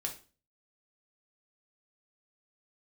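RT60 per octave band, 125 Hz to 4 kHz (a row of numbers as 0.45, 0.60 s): 0.55, 0.45, 0.40, 0.35, 0.30, 0.35 s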